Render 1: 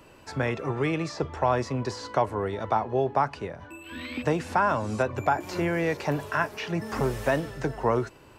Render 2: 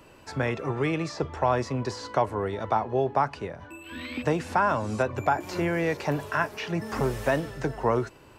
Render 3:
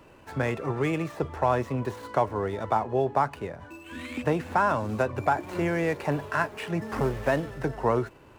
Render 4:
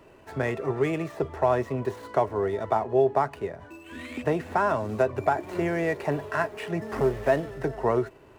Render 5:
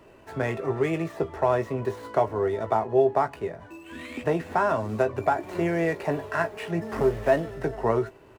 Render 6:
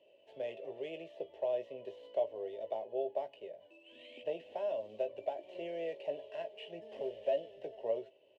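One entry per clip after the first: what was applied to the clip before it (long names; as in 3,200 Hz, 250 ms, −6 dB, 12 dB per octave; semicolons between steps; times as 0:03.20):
no processing that can be heard
running median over 9 samples
hollow resonant body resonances 400/650/1,900 Hz, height 8 dB; level −2 dB
double-tracking delay 18 ms −9 dB
pair of resonant band-passes 1,300 Hz, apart 2.4 octaves; level −3.5 dB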